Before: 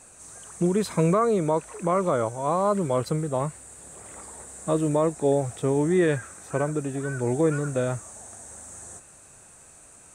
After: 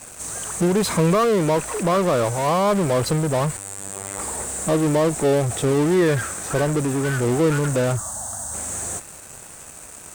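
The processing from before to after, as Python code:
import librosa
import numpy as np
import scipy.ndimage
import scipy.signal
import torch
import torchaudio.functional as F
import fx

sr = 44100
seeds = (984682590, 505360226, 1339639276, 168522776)

p1 = fx.fuzz(x, sr, gain_db=42.0, gate_db=-49.0)
p2 = x + (p1 * librosa.db_to_amplitude(-11.5))
p3 = fx.robotise(p2, sr, hz=97.9, at=(3.57, 4.19))
y = fx.fixed_phaser(p3, sr, hz=980.0, stages=4, at=(7.96, 8.53), fade=0.02)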